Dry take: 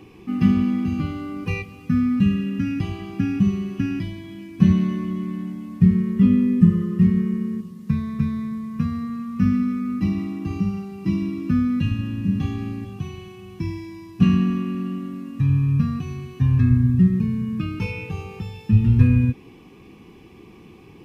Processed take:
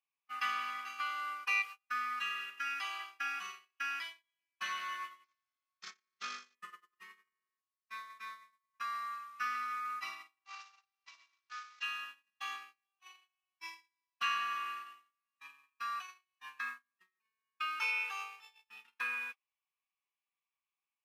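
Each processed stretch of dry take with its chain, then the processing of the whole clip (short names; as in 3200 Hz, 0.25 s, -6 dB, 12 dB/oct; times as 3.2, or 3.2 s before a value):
5.24–6.55 CVSD 32 kbps + high shelf 2200 Hz -2 dB + notch comb 960 Hz
10.45–11.83 CVSD 32 kbps + HPF 520 Hz + compressor 4:1, threshold -35 dBFS
whole clip: HPF 980 Hz 24 dB/oct; gate -44 dBFS, range -39 dB; dynamic EQ 1400 Hz, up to +8 dB, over -58 dBFS, Q 2.9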